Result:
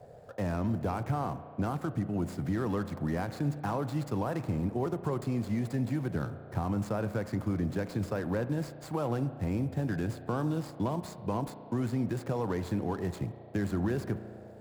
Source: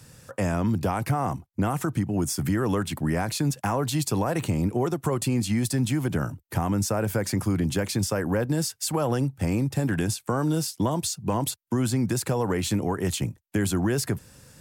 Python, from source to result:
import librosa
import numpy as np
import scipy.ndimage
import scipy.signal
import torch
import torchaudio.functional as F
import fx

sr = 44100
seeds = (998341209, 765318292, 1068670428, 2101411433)

y = scipy.signal.medfilt(x, 15)
y = fx.dmg_noise_band(y, sr, seeds[0], low_hz=410.0, high_hz=740.0, level_db=-47.0)
y = fx.rev_spring(y, sr, rt60_s=2.1, pass_ms=(34,), chirp_ms=35, drr_db=12.0)
y = y * 10.0 ** (-6.5 / 20.0)